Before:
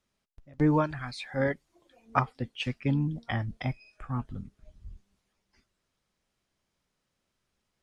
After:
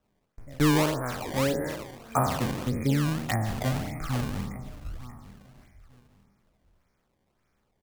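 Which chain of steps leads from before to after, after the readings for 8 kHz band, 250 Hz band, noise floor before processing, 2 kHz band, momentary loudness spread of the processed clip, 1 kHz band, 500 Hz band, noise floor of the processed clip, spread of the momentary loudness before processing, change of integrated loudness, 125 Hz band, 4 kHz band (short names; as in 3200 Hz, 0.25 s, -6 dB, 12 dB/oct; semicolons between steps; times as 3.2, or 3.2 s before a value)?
n/a, +3.0 dB, -81 dBFS, +2.5 dB, 18 LU, +3.0 dB, +3.5 dB, -74 dBFS, 15 LU, +2.5 dB, +3.0 dB, +5.5 dB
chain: spectral trails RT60 1.02 s; LPF 6800 Hz 24 dB/oct; treble ducked by the level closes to 780 Hz, closed at -23.5 dBFS; in parallel at -1 dB: compressor, threshold -36 dBFS, peak gain reduction 15.5 dB; on the sum: brick-wall FIR band-stop 2500–5300 Hz; on a send: feedback echo 0.899 s, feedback 24%, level -16.5 dB; on the sum: decimation with a swept rate 19×, swing 160% 1.7 Hz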